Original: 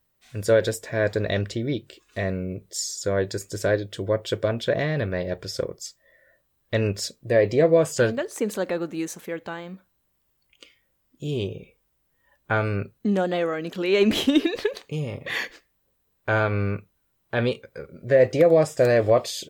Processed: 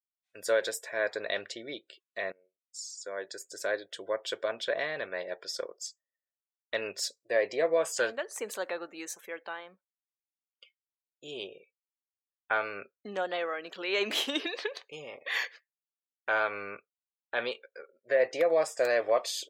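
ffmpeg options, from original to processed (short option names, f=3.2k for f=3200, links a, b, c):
-filter_complex "[0:a]asplit=2[a][b];[a]atrim=end=2.32,asetpts=PTS-STARTPTS,afade=t=out:st=2.316:d=0.004:c=hsin:silence=0.0668344[c];[b]atrim=start=2.32,asetpts=PTS-STARTPTS,afade=t=in:d=1.63:silence=0.0668344[d];[c][d]concat=n=2:v=0:a=1,highpass=670,agate=range=-33dB:threshold=-48dB:ratio=3:detection=peak,afftdn=nr=23:nf=-51,volume=-3dB"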